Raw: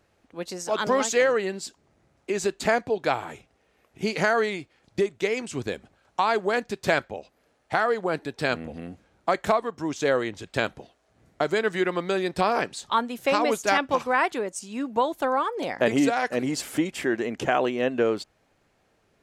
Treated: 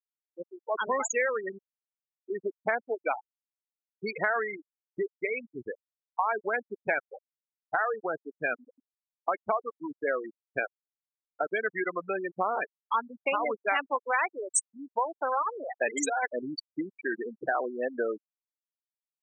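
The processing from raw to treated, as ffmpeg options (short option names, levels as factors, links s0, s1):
-filter_complex "[0:a]asettb=1/sr,asplit=3[s0][s1][s2];[s0]atrim=end=10.584[s3];[s1]atrim=start=10.58:end=11.53,asetpts=PTS-STARTPTS,afade=t=in:d=0.004:c=qsin,afade=t=out:st=0.946:d=0.004:c=qsin,aeval=exprs='val(0)*gte(abs(val(0)),0.0398)':c=same[s4];[s2]atrim=start=11.526[s5];[s3][s4]acrossfade=d=0.004:c1=hsin:c2=qsin[s6];[s6][s5]acrossfade=d=0.004:c1=qsin:c2=hsin,asettb=1/sr,asplit=3[s7][s8][s9];[s7]atrim=end=14.004[s10];[s8]atrim=start=14:end=16.15,asetpts=PTS-STARTPTS,afade=t=in:d=0.004:c=qsin,afade=t=out:st=2.146:d=0.004:c=qsin,bass=f=250:g=-9,treble=f=4000:g=13[s11];[s9]atrim=start=16.146[s12];[s10][s11]acrossfade=d=0.004:c1=hsin:c2=qsin[s13];[s13][s12]acrossfade=d=0.004:c1=qsin:c2=hsin,afftfilt=real='re*gte(hypot(re,im),0.141)':imag='im*gte(hypot(re,im),0.141)':win_size=1024:overlap=0.75,highpass=f=1300:p=1,acompressor=threshold=0.0282:ratio=2,volume=1.68"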